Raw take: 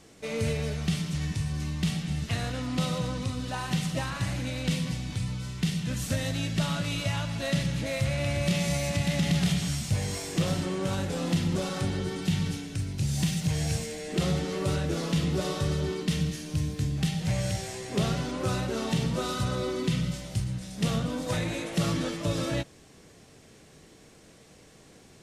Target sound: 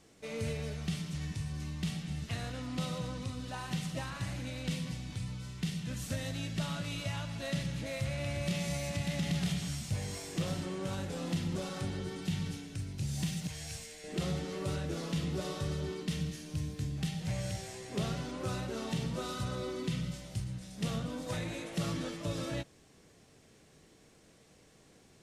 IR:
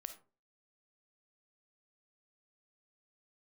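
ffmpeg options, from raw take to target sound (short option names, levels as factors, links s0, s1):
-filter_complex "[0:a]asettb=1/sr,asplit=3[s0][s1][s2];[s0]atrim=end=13.474[s3];[s1]atrim=start=13.47:end=14.04,asetpts=PTS-STARTPTS,afade=t=in:d=0.004:c=qsin,afade=t=out:st=0.566:d=0.004:c=qsin,equalizer=f=220:w=0.33:g=-12[s4];[s2]atrim=start=14.036[s5];[s3][s4]acrossfade=d=0.004:c1=hsin:c2=qsin[s6];[s6][s5]acrossfade=d=0.004:c1=qsin:c2=hsin,volume=0.422"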